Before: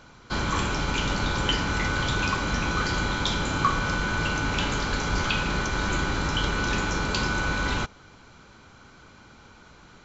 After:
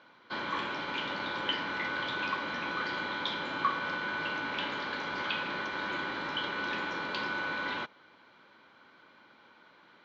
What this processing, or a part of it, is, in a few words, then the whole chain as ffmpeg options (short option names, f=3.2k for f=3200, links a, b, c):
phone earpiece: -af "highpass=400,equalizer=f=430:t=q:w=4:g=-6,equalizer=f=740:t=q:w=4:g=-7,equalizer=f=1.3k:t=q:w=4:g=-6,equalizer=f=2.6k:t=q:w=4:g=-6,lowpass=f=3.5k:w=0.5412,lowpass=f=3.5k:w=1.3066,volume=-2dB"